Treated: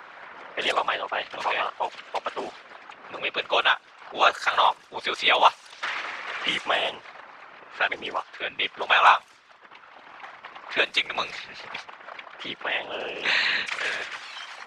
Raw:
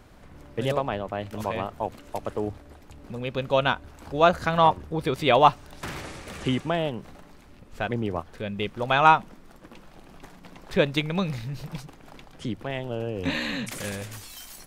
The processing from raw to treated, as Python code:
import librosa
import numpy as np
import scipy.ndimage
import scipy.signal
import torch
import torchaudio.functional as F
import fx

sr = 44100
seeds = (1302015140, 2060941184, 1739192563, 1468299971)

p1 = scipy.signal.sosfilt(scipy.signal.butter(2, 8300.0, 'lowpass', fs=sr, output='sos'), x)
p2 = fx.env_lowpass(p1, sr, base_hz=1600.0, full_db=-19.0)
p3 = scipy.signal.sosfilt(scipy.signal.butter(2, 1200.0, 'highpass', fs=sr, output='sos'), p2)
p4 = fx.rider(p3, sr, range_db=4, speed_s=2.0)
p5 = p3 + (p4 * librosa.db_to_amplitude(0.0))
p6 = fx.whisperise(p5, sr, seeds[0])
p7 = fx.band_squash(p6, sr, depth_pct=40)
y = p7 * librosa.db_to_amplitude(2.5)